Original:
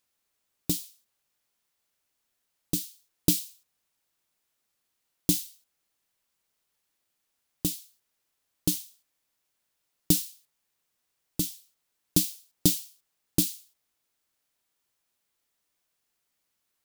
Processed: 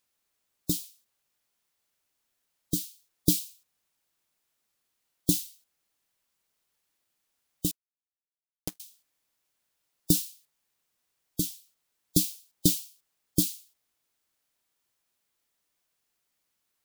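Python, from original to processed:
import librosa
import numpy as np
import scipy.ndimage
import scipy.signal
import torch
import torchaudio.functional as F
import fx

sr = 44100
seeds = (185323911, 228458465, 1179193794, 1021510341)

y = fx.spec_gate(x, sr, threshold_db=-25, keep='strong')
y = fx.power_curve(y, sr, exponent=3.0, at=(7.71, 8.8))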